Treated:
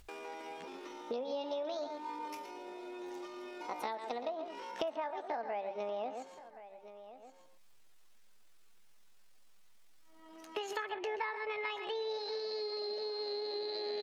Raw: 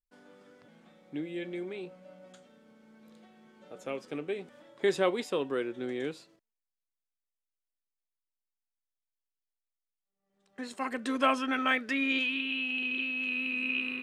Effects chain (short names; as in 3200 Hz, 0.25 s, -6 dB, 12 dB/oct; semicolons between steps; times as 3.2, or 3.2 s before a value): treble ducked by the level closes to 1100 Hz, closed at -30.5 dBFS; outdoor echo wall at 21 m, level -11 dB; pitch shift +8.5 st; dynamic EQ 430 Hz, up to -5 dB, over -42 dBFS; compressor 10:1, threshold -45 dBFS, peak gain reduction 21.5 dB; high shelf 9100 Hz -10 dB; echo 1.075 s -21.5 dB; upward compressor, threshold -53 dBFS; gain +10 dB